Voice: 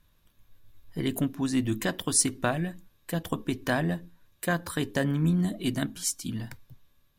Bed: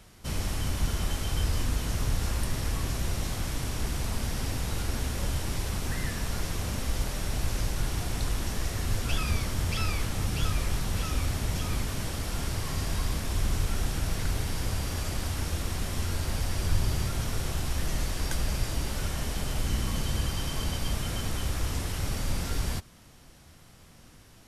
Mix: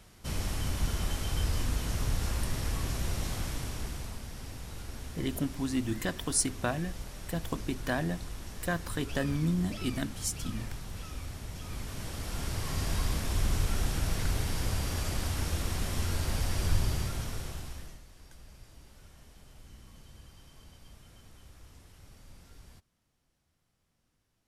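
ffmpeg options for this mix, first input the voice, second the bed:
ffmpeg -i stem1.wav -i stem2.wav -filter_complex "[0:a]adelay=4200,volume=-4.5dB[link_01];[1:a]volume=8dB,afade=type=out:start_time=3.38:duration=0.85:silence=0.354813,afade=type=in:start_time=11.58:duration=1.33:silence=0.298538,afade=type=out:start_time=16.69:duration=1.32:silence=0.0749894[link_02];[link_01][link_02]amix=inputs=2:normalize=0" out.wav

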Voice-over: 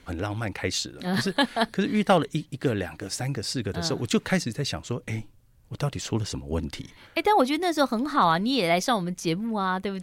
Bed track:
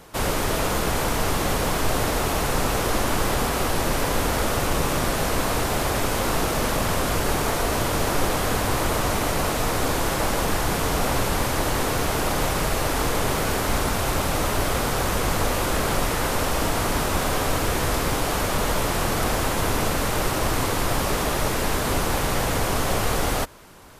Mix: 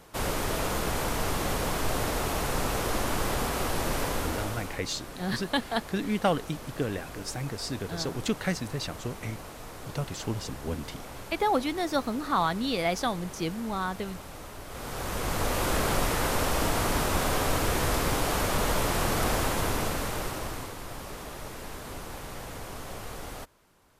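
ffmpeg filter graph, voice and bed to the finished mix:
ffmpeg -i stem1.wav -i stem2.wav -filter_complex "[0:a]adelay=4150,volume=-5dB[link_01];[1:a]volume=10dB,afade=type=out:start_time=4.02:duration=0.79:silence=0.211349,afade=type=in:start_time=14.67:duration=1.03:silence=0.158489,afade=type=out:start_time=19.36:duration=1.39:silence=0.223872[link_02];[link_01][link_02]amix=inputs=2:normalize=0" out.wav

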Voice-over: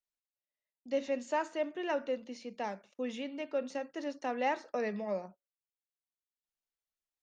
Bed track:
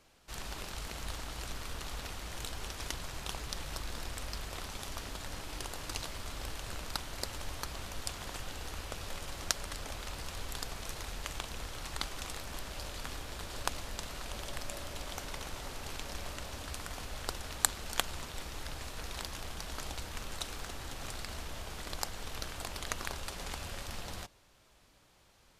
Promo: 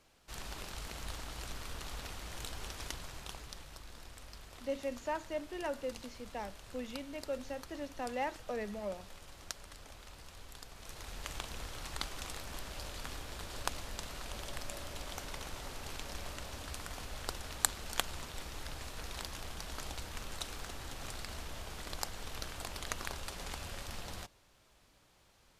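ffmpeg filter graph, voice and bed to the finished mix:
ffmpeg -i stem1.wav -i stem2.wav -filter_complex "[0:a]adelay=3750,volume=-4.5dB[link_01];[1:a]volume=6.5dB,afade=type=out:start_time=2.74:duration=0.98:silence=0.375837,afade=type=in:start_time=10.72:duration=0.62:silence=0.354813[link_02];[link_01][link_02]amix=inputs=2:normalize=0" out.wav

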